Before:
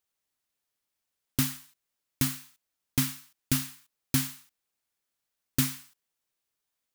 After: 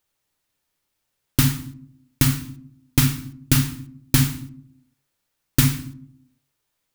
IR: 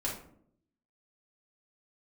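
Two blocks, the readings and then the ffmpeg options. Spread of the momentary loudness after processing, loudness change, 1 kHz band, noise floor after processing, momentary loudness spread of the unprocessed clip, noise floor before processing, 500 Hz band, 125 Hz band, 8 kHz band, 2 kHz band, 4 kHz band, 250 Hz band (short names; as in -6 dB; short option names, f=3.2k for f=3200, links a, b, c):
19 LU, +8.5 dB, +9.5 dB, -77 dBFS, 15 LU, -85 dBFS, +11.0 dB, +13.5 dB, +7.0 dB, +9.0 dB, +8.0 dB, +9.0 dB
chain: -filter_complex "[0:a]equalizer=f=120:t=o:w=0.77:g=5,asplit=2[a][b];[1:a]atrim=start_sample=2205,lowpass=5.4k,lowshelf=f=490:g=4.5[c];[b][c]afir=irnorm=-1:irlink=0,volume=-10dB[d];[a][d]amix=inputs=2:normalize=0,volume=7dB"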